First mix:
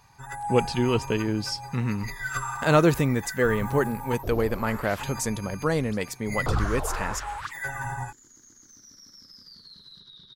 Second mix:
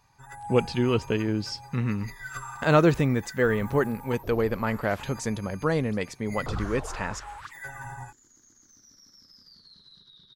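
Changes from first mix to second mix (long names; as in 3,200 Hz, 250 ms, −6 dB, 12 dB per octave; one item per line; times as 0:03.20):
speech: add high-frequency loss of the air 77 metres
first sound −7.0 dB
second sound −5.0 dB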